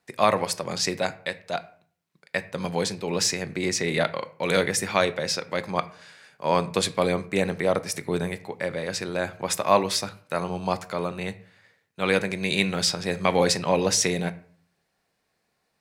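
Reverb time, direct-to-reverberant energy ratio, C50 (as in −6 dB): 0.50 s, 12.0 dB, 18.0 dB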